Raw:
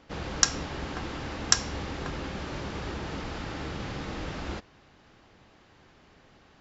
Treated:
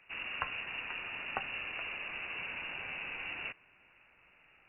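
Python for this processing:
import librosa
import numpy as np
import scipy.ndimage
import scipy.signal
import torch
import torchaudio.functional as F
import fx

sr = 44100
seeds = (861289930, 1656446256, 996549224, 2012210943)

y = fx.speed_glide(x, sr, from_pct=99, to_pct=183)
y = fx.freq_invert(y, sr, carrier_hz=2800)
y = y * 10.0 ** (-6.0 / 20.0)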